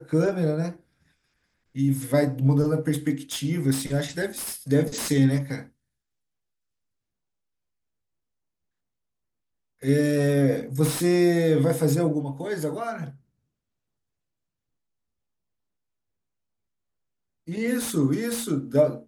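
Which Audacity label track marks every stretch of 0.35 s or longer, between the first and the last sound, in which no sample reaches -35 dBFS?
0.720000	1.760000	silence
5.630000	9.830000	silence
13.100000	17.480000	silence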